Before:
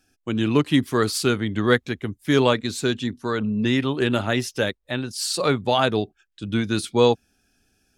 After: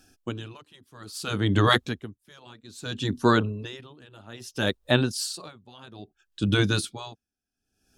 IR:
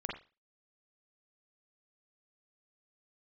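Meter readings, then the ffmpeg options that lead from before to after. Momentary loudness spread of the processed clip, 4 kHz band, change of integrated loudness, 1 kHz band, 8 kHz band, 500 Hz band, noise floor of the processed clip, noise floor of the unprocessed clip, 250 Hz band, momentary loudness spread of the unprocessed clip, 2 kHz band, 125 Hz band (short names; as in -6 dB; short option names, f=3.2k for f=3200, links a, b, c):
21 LU, -3.0 dB, -3.0 dB, -4.0 dB, -5.5 dB, -8.5 dB, under -85 dBFS, -71 dBFS, -6.5 dB, 9 LU, -3.0 dB, -1.5 dB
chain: -af "afftfilt=real='re*lt(hypot(re,im),0.501)':imag='im*lt(hypot(re,im),0.501)':win_size=1024:overlap=0.75,equalizer=f=2.1k:t=o:w=0.46:g=-8,aeval=exprs='val(0)*pow(10,-32*(0.5-0.5*cos(2*PI*0.61*n/s))/20)':c=same,volume=8dB"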